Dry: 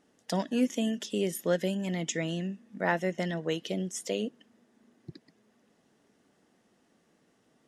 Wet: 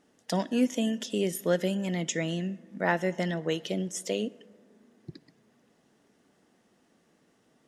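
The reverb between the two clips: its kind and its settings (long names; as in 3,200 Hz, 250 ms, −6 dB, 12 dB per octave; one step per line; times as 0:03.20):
dense smooth reverb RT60 2.1 s, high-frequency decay 0.4×, DRR 19.5 dB
level +1.5 dB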